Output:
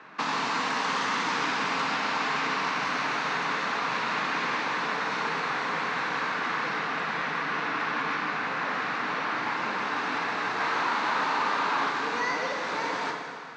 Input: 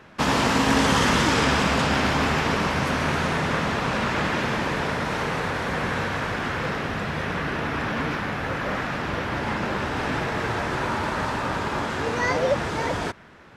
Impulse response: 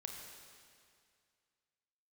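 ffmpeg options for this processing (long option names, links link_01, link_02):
-filter_complex "[0:a]asettb=1/sr,asplit=3[link_01][link_02][link_03];[link_01]atrim=end=10.604[link_04];[link_02]atrim=start=10.6:end=11.9,asetpts=PTS-STARTPTS,afade=type=in:duration=0.004:curve=qsin,afade=type=out:start_time=1.296:duration=0.004:curve=qsin,asplit=2[link_05][link_06];[link_06]highpass=frequency=720:poles=1,volume=26dB,asoftclip=type=tanh:threshold=-14dB[link_07];[link_05][link_07]amix=inputs=2:normalize=0,lowpass=frequency=1500:poles=1,volume=-6dB[link_08];[link_03]atrim=start=11.896[link_09];[link_04][link_08]acrossfade=duration=0.004:curve1=hsin:curve2=qsin[link_10];[link_10][link_09]acrossfade=duration=0.004:curve1=qsin:curve2=hsin,acrossover=split=440|2800[link_11][link_12][link_13];[link_11]acompressor=threshold=-35dB:ratio=4[link_14];[link_12]acompressor=threshold=-33dB:ratio=4[link_15];[link_13]acompressor=threshold=-35dB:ratio=4[link_16];[link_14][link_15][link_16]amix=inputs=3:normalize=0,highpass=frequency=210:width=0.5412,highpass=frequency=210:width=1.3066,equalizer=frequency=220:width_type=q:width=4:gain=-8,equalizer=frequency=370:width_type=q:width=4:gain=-8,equalizer=frequency=570:width_type=q:width=4:gain=-9,equalizer=frequency=1100:width_type=q:width=4:gain=4,equalizer=frequency=3200:width_type=q:width=4:gain=-6,equalizer=frequency=5200:width_type=q:width=4:gain=-5,lowpass=frequency=5600:width=0.5412,lowpass=frequency=5600:width=1.3066[link_17];[1:a]atrim=start_sample=2205[link_18];[link_17][link_18]afir=irnorm=-1:irlink=0,volume=6.5dB"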